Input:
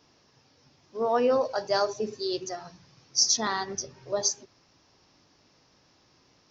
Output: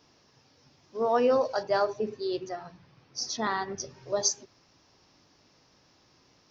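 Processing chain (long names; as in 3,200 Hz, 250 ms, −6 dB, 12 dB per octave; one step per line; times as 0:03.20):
0:01.63–0:03.80: low-pass filter 3,000 Hz 12 dB per octave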